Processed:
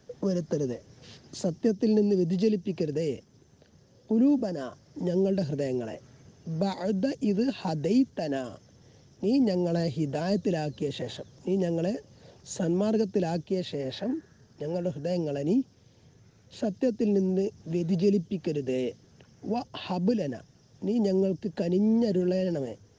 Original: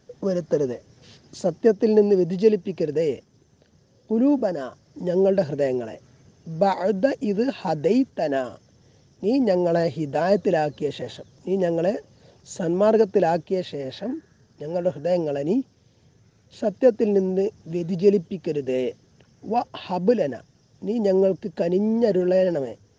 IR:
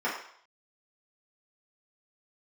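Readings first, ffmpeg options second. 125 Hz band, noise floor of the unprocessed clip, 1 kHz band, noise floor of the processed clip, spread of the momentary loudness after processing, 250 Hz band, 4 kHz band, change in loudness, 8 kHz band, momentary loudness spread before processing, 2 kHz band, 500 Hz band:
-0.5 dB, -59 dBFS, -11.0 dB, -60 dBFS, 12 LU, -2.0 dB, -1.5 dB, -5.5 dB, n/a, 12 LU, -8.0 dB, -8.5 dB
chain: -filter_complex "[0:a]acrossover=split=300|3000[a][b][c];[b]acompressor=threshold=-32dB:ratio=6[d];[a][d][c]amix=inputs=3:normalize=0"

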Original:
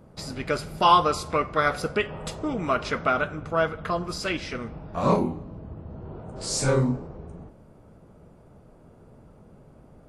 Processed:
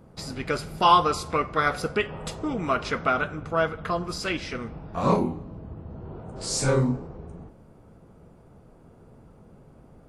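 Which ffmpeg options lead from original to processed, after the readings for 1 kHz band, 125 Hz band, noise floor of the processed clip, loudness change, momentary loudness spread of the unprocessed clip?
0.0 dB, 0.0 dB, -53 dBFS, 0.0 dB, 19 LU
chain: -af "bandreject=f=600:w=16"

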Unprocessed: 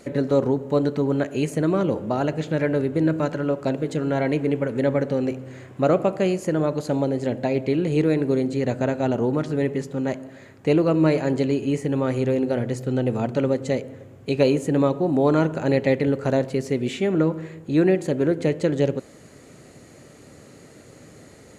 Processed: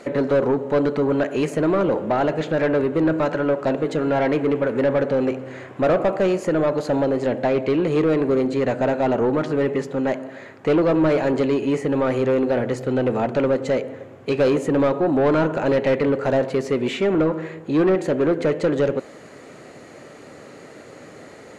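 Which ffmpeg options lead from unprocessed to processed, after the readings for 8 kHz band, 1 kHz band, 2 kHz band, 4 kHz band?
n/a, +4.5 dB, +4.0 dB, +1.5 dB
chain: -filter_complex "[0:a]asplit=2[a][b];[b]highpass=f=720:p=1,volume=21dB,asoftclip=type=tanh:threshold=-6dB[c];[a][c]amix=inputs=2:normalize=0,lowpass=f=1.5k:p=1,volume=-6dB,volume=-3dB"

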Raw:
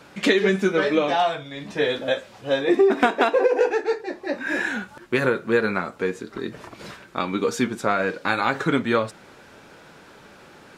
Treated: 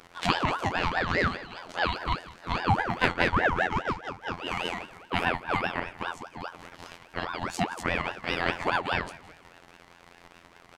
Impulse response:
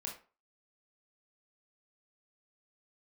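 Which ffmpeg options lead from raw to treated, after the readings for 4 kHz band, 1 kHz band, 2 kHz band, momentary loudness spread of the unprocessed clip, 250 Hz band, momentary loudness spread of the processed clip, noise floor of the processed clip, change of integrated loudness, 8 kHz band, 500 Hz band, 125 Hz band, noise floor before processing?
-3.0 dB, -2.5 dB, -3.5 dB, 13 LU, -10.0 dB, 14 LU, -55 dBFS, -6.5 dB, -6.0 dB, -13.0 dB, 0.0 dB, -49 dBFS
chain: -filter_complex "[0:a]afftfilt=real='hypot(re,im)*cos(PI*b)':imag='0':win_size=2048:overlap=0.75,aeval=exprs='0.841*(cos(1*acos(clip(val(0)/0.841,-1,1)))-cos(1*PI/2))+0.0266*(cos(2*acos(clip(val(0)/0.841,-1,1)))-cos(2*PI/2))+0.0075*(cos(6*acos(clip(val(0)/0.841,-1,1)))-cos(6*PI/2))':c=same,asplit=2[a][b];[b]aecho=0:1:171|342|513|684:0.119|0.0535|0.0241|0.0108[c];[a][c]amix=inputs=2:normalize=0,aeval=exprs='val(0)*sin(2*PI*860*n/s+860*0.5/4.9*sin(2*PI*4.9*n/s))':c=same"

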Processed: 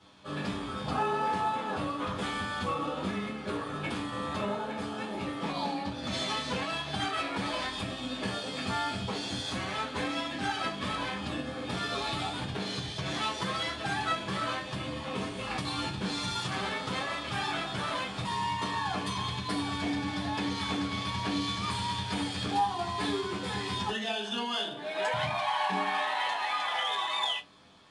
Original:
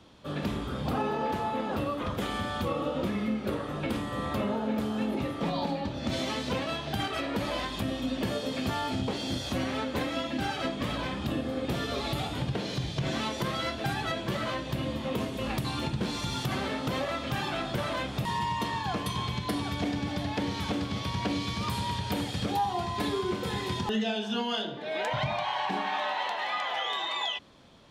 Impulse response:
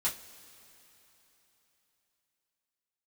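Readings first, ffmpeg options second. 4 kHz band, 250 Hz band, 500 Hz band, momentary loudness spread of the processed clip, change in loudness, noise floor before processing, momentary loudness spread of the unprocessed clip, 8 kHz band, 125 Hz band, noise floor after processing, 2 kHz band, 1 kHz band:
+1.0 dB, -4.0 dB, -3.5 dB, 5 LU, -1.0 dB, -37 dBFS, 2 LU, +0.5 dB, -4.5 dB, -39 dBFS, +1.0 dB, +0.5 dB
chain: -filter_complex "[0:a]lowshelf=f=230:g=-7.5[a];[1:a]atrim=start_sample=2205,atrim=end_sample=3969,asetrate=52920,aresample=44100[b];[a][b]afir=irnorm=-1:irlink=0,volume=-2dB" -ar 22050 -c:a adpcm_ima_wav

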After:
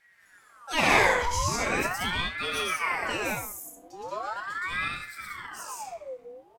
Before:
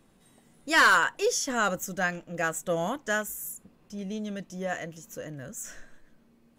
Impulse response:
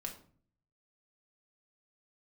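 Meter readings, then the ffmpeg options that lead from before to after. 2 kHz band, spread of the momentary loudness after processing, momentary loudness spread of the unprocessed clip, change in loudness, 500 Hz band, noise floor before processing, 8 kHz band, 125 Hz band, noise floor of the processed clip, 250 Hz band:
-1.0 dB, 18 LU, 20 LU, -0.5 dB, -1.0 dB, -62 dBFS, -1.5 dB, +2.0 dB, -59 dBFS, -2.5 dB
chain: -filter_complex "[0:a]aeval=exprs='0.2*(cos(1*acos(clip(val(0)/0.2,-1,1)))-cos(1*PI/2))+0.00224*(cos(6*acos(clip(val(0)/0.2,-1,1)))-cos(6*PI/2))':c=same,aecho=1:1:116.6|180.8:1|0.794,acrossover=split=220|5300[a][b][c];[a]asoftclip=type=hard:threshold=-39dB[d];[d][b][c]amix=inputs=3:normalize=0[e];[1:a]atrim=start_sample=2205[f];[e][f]afir=irnorm=-1:irlink=0,aeval=exprs='val(0)*sin(2*PI*1200*n/s+1200*0.6/0.4*sin(2*PI*0.4*n/s))':c=same"

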